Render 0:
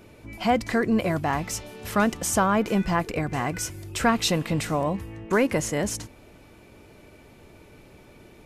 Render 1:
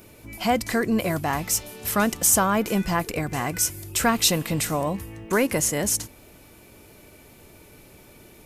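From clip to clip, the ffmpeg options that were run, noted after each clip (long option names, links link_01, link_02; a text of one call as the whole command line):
ffmpeg -i in.wav -af "aemphasis=mode=production:type=50fm" out.wav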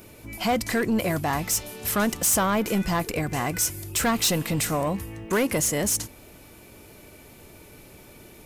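ffmpeg -i in.wav -af "asoftclip=type=tanh:threshold=-18.5dB,volume=1.5dB" out.wav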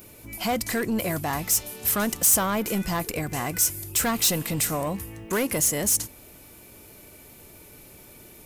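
ffmpeg -i in.wav -af "highshelf=frequency=7800:gain=9.5,volume=-2.5dB" out.wav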